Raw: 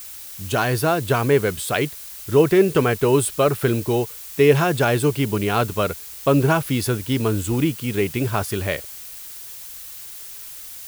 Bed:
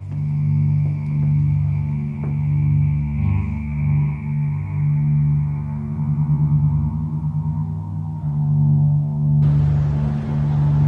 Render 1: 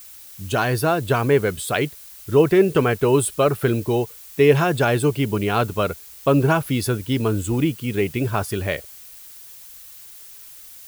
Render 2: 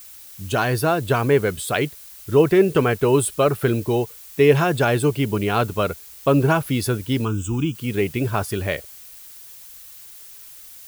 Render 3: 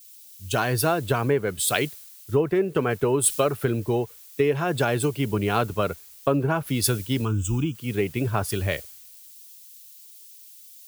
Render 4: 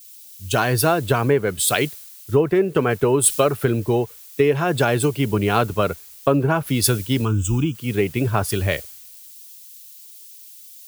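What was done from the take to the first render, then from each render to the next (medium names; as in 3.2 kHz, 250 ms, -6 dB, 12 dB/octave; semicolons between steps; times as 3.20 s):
noise reduction 6 dB, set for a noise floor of -37 dBFS
7.25–7.75 s: static phaser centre 2.9 kHz, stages 8
compression 10:1, threshold -19 dBFS, peak gain reduction 11 dB; three bands expanded up and down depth 100%
trim +4.5 dB; peak limiter -3 dBFS, peak gain reduction 2.5 dB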